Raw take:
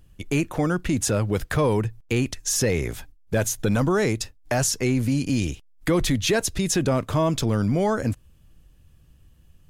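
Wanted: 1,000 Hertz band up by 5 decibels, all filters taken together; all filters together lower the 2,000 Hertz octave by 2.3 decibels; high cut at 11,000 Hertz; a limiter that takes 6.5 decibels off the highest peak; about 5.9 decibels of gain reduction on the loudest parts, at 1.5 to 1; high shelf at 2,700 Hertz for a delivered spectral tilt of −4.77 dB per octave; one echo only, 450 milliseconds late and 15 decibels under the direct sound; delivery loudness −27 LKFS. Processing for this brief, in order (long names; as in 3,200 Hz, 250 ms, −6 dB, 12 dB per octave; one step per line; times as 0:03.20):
low-pass filter 11,000 Hz
parametric band 1,000 Hz +7.5 dB
parametric band 2,000 Hz −7.5 dB
high-shelf EQ 2,700 Hz +3.5 dB
downward compressor 1.5 to 1, threshold −33 dBFS
brickwall limiter −20 dBFS
single-tap delay 450 ms −15 dB
level +3 dB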